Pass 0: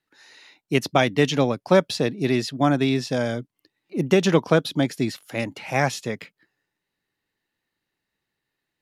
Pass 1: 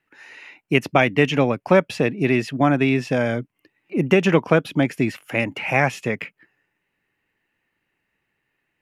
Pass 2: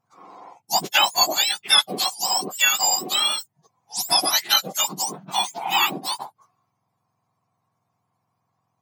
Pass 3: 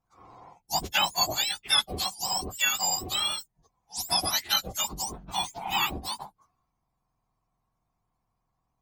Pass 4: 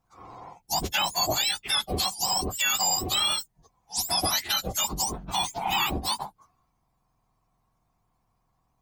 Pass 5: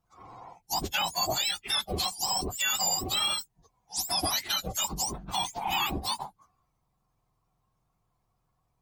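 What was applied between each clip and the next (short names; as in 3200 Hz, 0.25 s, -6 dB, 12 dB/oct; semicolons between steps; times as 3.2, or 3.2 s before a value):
resonant high shelf 3200 Hz -6.5 dB, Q 3; in parallel at +2 dB: compressor, threshold -26 dBFS, peak gain reduction 14.5 dB; on the sum: gain -1 dB
spectrum mirrored in octaves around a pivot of 1400 Hz; dynamic EQ 3100 Hz, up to +6 dB, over -37 dBFS, Q 0.86
octaver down 2 oct, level +3 dB; gain -7 dB
limiter -21.5 dBFS, peak gain reduction 11 dB; gain +6 dB
bin magnitudes rounded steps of 15 dB; wow and flutter 29 cents; gain -2.5 dB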